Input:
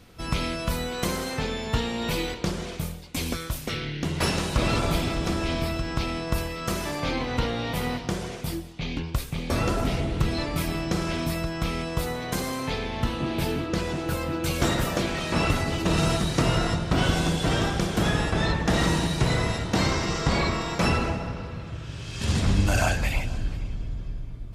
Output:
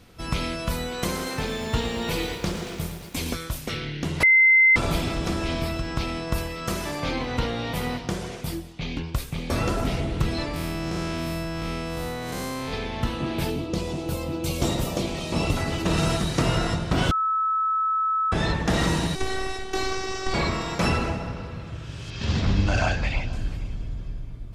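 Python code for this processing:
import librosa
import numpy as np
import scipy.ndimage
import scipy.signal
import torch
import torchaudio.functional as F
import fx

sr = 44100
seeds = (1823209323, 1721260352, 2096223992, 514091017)

y = fx.echo_crushed(x, sr, ms=114, feedback_pct=80, bits=8, wet_db=-10.5, at=(1.04, 3.35))
y = fx.spec_blur(y, sr, span_ms=167.0, at=(10.53, 12.72), fade=0.02)
y = fx.peak_eq(y, sr, hz=1600.0, db=-12.5, octaves=0.78, at=(13.5, 15.57))
y = fx.robotise(y, sr, hz=380.0, at=(19.15, 20.34))
y = fx.lowpass(y, sr, hz=5600.0, slope=24, at=(22.1, 23.33))
y = fx.edit(y, sr, fx.bleep(start_s=4.23, length_s=0.53, hz=2070.0, db=-12.5),
    fx.bleep(start_s=17.11, length_s=1.21, hz=1300.0, db=-20.5), tone=tone)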